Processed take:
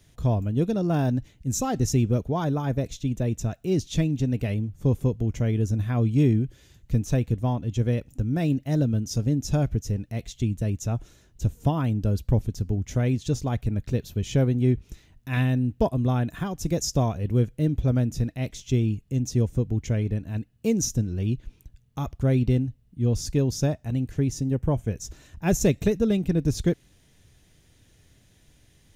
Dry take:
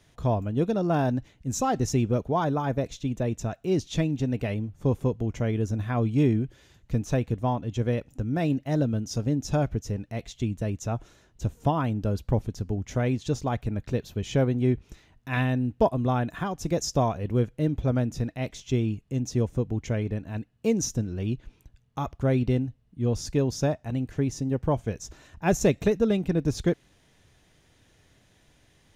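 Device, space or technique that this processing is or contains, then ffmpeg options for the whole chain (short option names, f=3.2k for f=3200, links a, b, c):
smiley-face EQ: -filter_complex "[0:a]lowshelf=f=170:g=6,equalizer=f=960:t=o:w=1.7:g=-5,highshelf=f=8.3k:g=9,asettb=1/sr,asplit=3[a][b][c];[a]atrim=end=24.564[d];[b]atrim=start=24.56:end=24.98,asetpts=PTS-STARTPTS,afade=t=in:d=0.004:c=qsin,afade=t=out:st=0.416:d=0.004:c=qsin,equalizer=f=4.5k:t=o:w=0.87:g=-8[e];[c]atrim=start=24.976[f];[d][e]acrossfade=d=0.004:c1=hsin:c2=qsin[g];[g][f]acrossfade=d=0.004:c1=qsin:c2=hsin"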